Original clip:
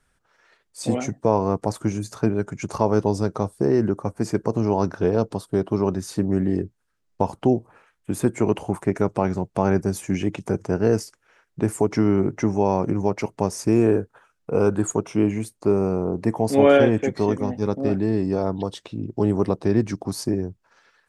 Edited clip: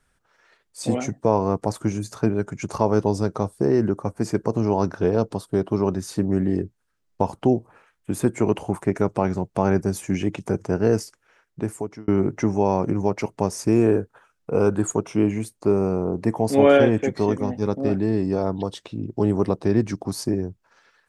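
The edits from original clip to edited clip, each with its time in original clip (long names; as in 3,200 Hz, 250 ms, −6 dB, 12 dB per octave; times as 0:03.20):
0:11.02–0:12.08: fade out equal-power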